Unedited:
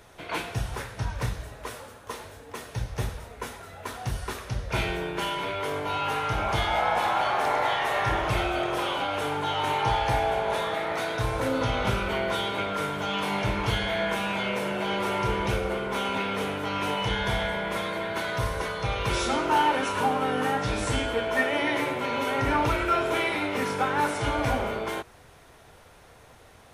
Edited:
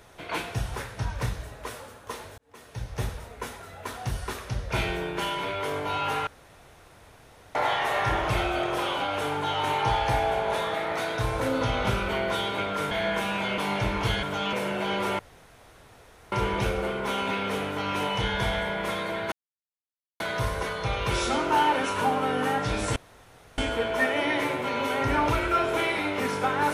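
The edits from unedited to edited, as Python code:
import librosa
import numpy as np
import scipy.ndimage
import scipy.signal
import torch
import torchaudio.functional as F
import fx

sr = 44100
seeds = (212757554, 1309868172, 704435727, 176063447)

y = fx.edit(x, sr, fx.fade_in_span(start_s=2.38, length_s=0.67),
    fx.room_tone_fill(start_s=6.27, length_s=1.28),
    fx.swap(start_s=12.91, length_s=0.3, other_s=13.86, other_length_s=0.67),
    fx.insert_room_tone(at_s=15.19, length_s=1.13),
    fx.insert_silence(at_s=18.19, length_s=0.88),
    fx.insert_room_tone(at_s=20.95, length_s=0.62), tone=tone)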